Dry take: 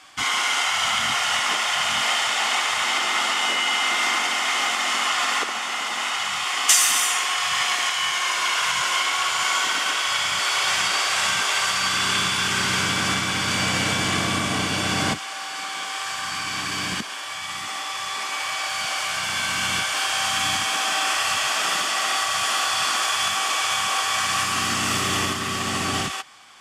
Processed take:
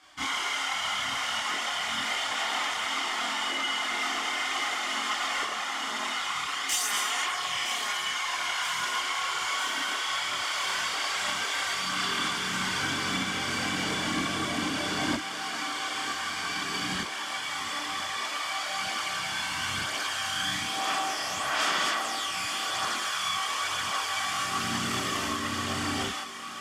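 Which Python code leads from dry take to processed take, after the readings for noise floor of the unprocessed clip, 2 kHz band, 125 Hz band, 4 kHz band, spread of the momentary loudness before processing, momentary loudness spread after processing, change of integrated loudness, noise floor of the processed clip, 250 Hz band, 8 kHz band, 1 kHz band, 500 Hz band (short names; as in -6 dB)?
-32 dBFS, -7.0 dB, -8.5 dB, -7.0 dB, 7 LU, 3 LU, -7.5 dB, -34 dBFS, -3.5 dB, -9.5 dB, -6.5 dB, -5.5 dB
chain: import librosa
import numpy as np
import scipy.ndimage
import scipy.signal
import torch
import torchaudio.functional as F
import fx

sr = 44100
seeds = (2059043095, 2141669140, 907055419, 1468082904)

p1 = fx.peak_eq(x, sr, hz=8700.0, db=-3.5, octaves=1.3)
p2 = fx.notch(p1, sr, hz=2600.0, q=13.0)
p3 = fx.rider(p2, sr, range_db=10, speed_s=0.5)
p4 = p2 + (p3 * librosa.db_to_amplitude(-0.5))
p5 = fx.peak_eq(p4, sr, hz=290.0, db=4.5, octaves=0.51)
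p6 = 10.0 ** (-7.5 / 20.0) * np.tanh(p5 / 10.0 ** (-7.5 / 20.0))
p7 = fx.echo_thinned(p6, sr, ms=965, feedback_pct=79, hz=220.0, wet_db=-12.5)
p8 = fx.chorus_voices(p7, sr, voices=4, hz=0.52, base_ms=28, depth_ms=2.5, mix_pct=55)
y = p8 * librosa.db_to_amplitude(-9.0)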